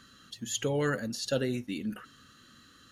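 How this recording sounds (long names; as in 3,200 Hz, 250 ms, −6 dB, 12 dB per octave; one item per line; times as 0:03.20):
background noise floor −58 dBFS
spectral slope −4.5 dB per octave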